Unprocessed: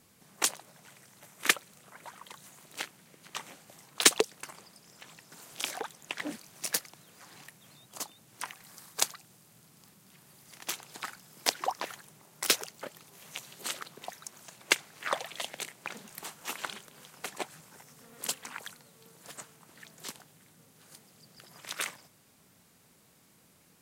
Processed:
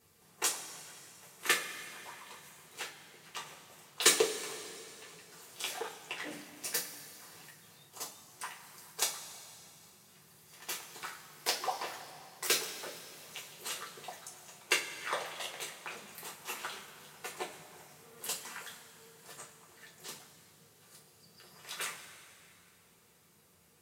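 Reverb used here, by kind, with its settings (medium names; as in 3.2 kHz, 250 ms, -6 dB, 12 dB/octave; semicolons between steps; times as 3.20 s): two-slope reverb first 0.26 s, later 2.8 s, from -18 dB, DRR -5 dB; trim -8.5 dB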